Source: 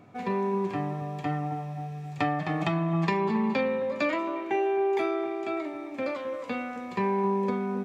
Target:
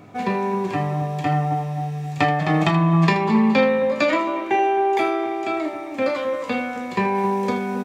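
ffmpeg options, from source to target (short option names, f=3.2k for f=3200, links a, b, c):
-af "asetnsamples=n=441:p=0,asendcmd='7.15 highshelf g 11.5',highshelf=f=4k:g=4.5,aecho=1:1:19|32|79:0.335|0.316|0.251,volume=7.5dB"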